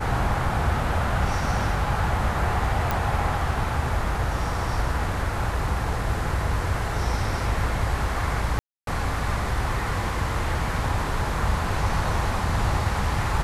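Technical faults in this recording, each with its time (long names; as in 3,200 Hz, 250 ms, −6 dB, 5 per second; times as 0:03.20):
0:02.91: click
0:08.59–0:08.87: drop-out 282 ms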